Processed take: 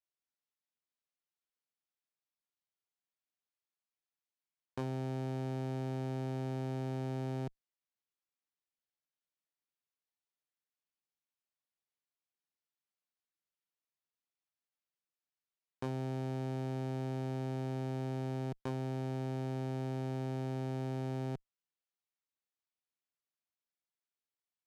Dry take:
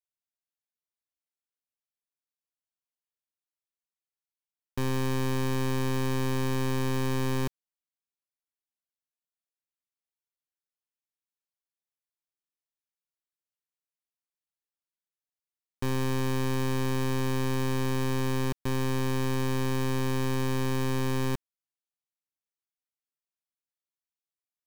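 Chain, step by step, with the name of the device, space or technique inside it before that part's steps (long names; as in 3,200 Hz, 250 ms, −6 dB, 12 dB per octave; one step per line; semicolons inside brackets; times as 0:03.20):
valve radio (band-pass filter 110–5,300 Hz; tube saturation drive 27 dB, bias 0.45; saturating transformer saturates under 440 Hz)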